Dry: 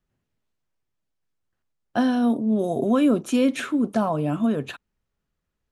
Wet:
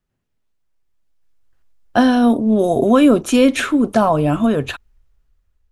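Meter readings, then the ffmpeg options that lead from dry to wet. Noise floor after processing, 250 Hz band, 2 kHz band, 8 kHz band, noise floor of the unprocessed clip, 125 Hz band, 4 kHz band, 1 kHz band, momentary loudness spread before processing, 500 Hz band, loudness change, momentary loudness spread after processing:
−73 dBFS, +7.0 dB, +10.0 dB, +10.0 dB, −80 dBFS, +7.0 dB, +10.0 dB, +9.5 dB, 9 LU, +9.0 dB, +7.5 dB, 9 LU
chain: -af "asubboost=boost=11:cutoff=58,dynaudnorm=framelen=350:gausssize=7:maxgain=11dB,volume=1dB"

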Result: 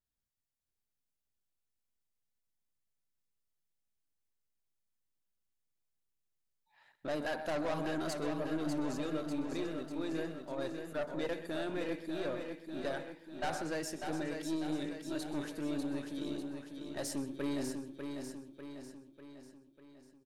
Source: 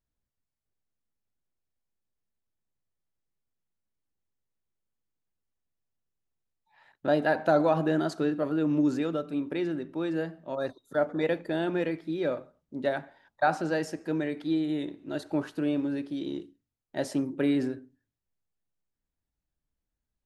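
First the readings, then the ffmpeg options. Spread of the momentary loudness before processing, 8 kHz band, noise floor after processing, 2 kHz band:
10 LU, can't be measured, below −85 dBFS, −8.0 dB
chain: -filter_complex "[0:a]highshelf=frequency=2800:gain=7.5,asplit=2[link_01][link_02];[link_02]aecho=0:1:128:0.168[link_03];[link_01][link_03]amix=inputs=2:normalize=0,aeval=exprs='(tanh(17.8*val(0)+0.35)-tanh(0.35))/17.8':channel_layout=same,asplit=2[link_04][link_05];[link_05]aecho=0:1:596|1192|1788|2384|2980|3576|4172:0.501|0.266|0.141|0.0746|0.0395|0.021|0.0111[link_06];[link_04][link_06]amix=inputs=2:normalize=0,adynamicequalizer=threshold=0.002:dfrequency=5800:dqfactor=0.7:tfrequency=5800:tqfactor=0.7:attack=5:release=100:ratio=0.375:range=2.5:mode=boostabove:tftype=highshelf,volume=-6.5dB"

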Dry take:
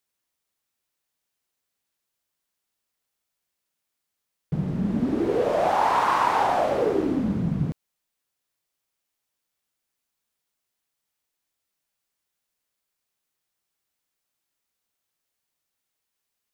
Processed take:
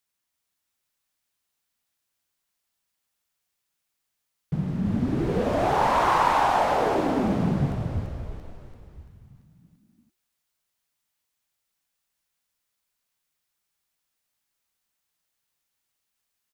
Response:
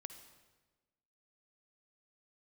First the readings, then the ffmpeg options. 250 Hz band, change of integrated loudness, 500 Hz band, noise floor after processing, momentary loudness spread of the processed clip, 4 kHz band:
−0.5 dB, 0.0 dB, −1.5 dB, −80 dBFS, 13 LU, +2.0 dB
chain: -filter_complex "[0:a]equalizer=frequency=440:width=1.1:gain=-4.5,asplit=8[link_01][link_02][link_03][link_04][link_05][link_06][link_07][link_08];[link_02]adelay=339,afreqshift=-54,volume=-4dB[link_09];[link_03]adelay=678,afreqshift=-108,volume=-9.5dB[link_10];[link_04]adelay=1017,afreqshift=-162,volume=-15dB[link_11];[link_05]adelay=1356,afreqshift=-216,volume=-20.5dB[link_12];[link_06]adelay=1695,afreqshift=-270,volume=-26.1dB[link_13];[link_07]adelay=2034,afreqshift=-324,volume=-31.6dB[link_14];[link_08]adelay=2373,afreqshift=-378,volume=-37.1dB[link_15];[link_01][link_09][link_10][link_11][link_12][link_13][link_14][link_15]amix=inputs=8:normalize=0"

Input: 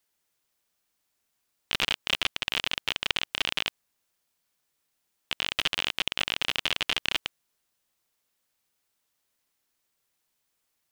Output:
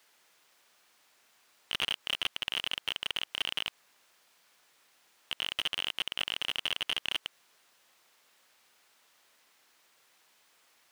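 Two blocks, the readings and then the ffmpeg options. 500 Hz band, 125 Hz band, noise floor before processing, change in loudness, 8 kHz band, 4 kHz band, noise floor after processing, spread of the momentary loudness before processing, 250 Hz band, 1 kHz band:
−7.5 dB, −10.5 dB, −78 dBFS, −5.0 dB, −6.0 dB, −3.5 dB, −70 dBFS, 5 LU, −9.0 dB, −7.0 dB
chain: -filter_complex "[0:a]alimiter=limit=-13dB:level=0:latency=1:release=105,asplit=2[link_01][link_02];[link_02]highpass=frequency=720:poles=1,volume=27dB,asoftclip=type=tanh:threshold=-13dB[link_03];[link_01][link_03]amix=inputs=2:normalize=0,lowpass=frequency=2900:poles=1,volume=-6dB,volume=-2.5dB"

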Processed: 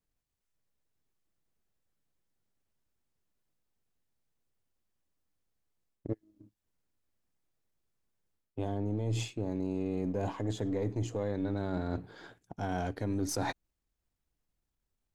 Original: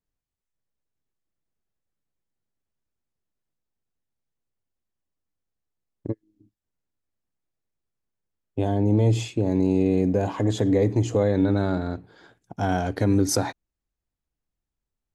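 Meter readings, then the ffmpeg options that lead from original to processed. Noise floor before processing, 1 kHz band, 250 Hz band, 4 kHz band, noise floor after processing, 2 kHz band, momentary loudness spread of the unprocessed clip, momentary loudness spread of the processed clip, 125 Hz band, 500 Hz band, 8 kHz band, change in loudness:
below −85 dBFS, −9.0 dB, −12.0 dB, −9.0 dB, −85 dBFS, −8.0 dB, 14 LU, 10 LU, −11.5 dB, −12.0 dB, −10.5 dB, −12.0 dB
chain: -af "aeval=exprs='if(lt(val(0),0),0.708*val(0),val(0))':channel_layout=same,areverse,acompressor=threshold=-34dB:ratio=5,areverse,volume=2.5dB"

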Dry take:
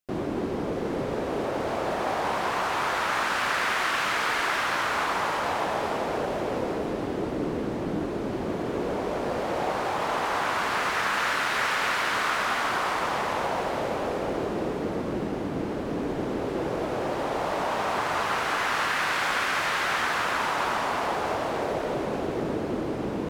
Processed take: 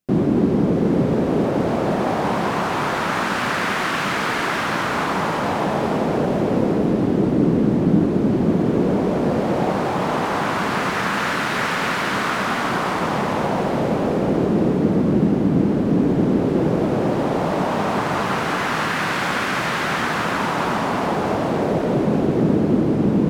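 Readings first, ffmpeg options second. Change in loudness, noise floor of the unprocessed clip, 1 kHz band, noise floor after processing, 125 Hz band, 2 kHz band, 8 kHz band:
+7.5 dB, −31 dBFS, +4.0 dB, −23 dBFS, +15.5 dB, +3.0 dB, +2.5 dB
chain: -af "equalizer=frequency=180:width_type=o:width=2:gain=15,volume=2.5dB"

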